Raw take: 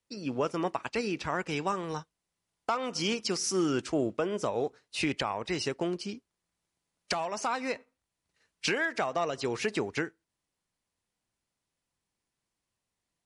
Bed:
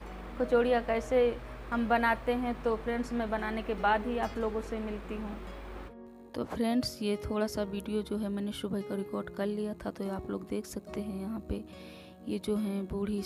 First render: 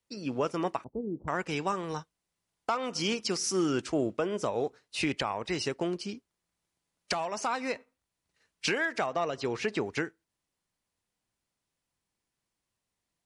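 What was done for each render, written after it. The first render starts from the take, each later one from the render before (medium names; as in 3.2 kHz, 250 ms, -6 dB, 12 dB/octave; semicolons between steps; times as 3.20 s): 0.84–1.28 s: Gaussian low-pass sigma 15 samples; 9.06–9.86 s: distance through air 63 m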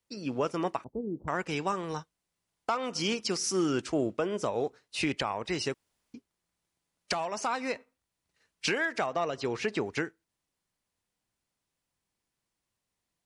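5.74–6.14 s: room tone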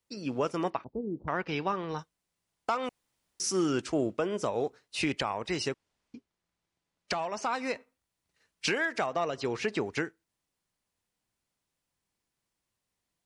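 0.70–1.99 s: steep low-pass 5 kHz; 2.89–3.40 s: room tone; 5.69–7.53 s: distance through air 62 m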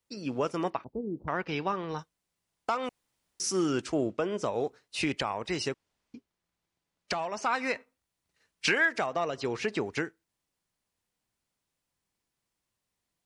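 3.95–4.48 s: low-pass 7.8 kHz; 7.45–8.89 s: dynamic bell 1.8 kHz, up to +6 dB, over -44 dBFS, Q 0.98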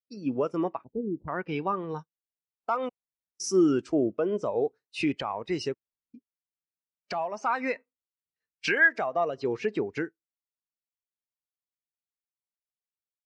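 in parallel at -2 dB: peak limiter -22 dBFS, peak gain reduction 9 dB; on the sum: spectral contrast expander 1.5:1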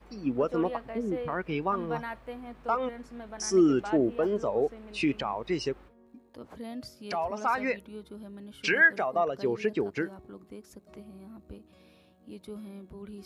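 add bed -10.5 dB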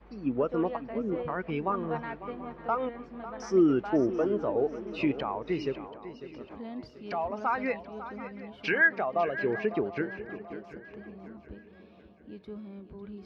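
distance through air 240 m; shuffle delay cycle 734 ms, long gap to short 3:1, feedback 38%, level -13.5 dB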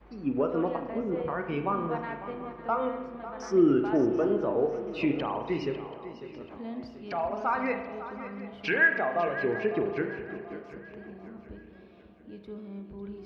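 spring tank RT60 1.1 s, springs 35 ms, chirp 45 ms, DRR 6 dB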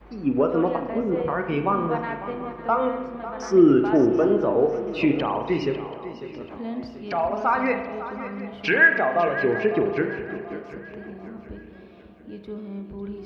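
trim +6.5 dB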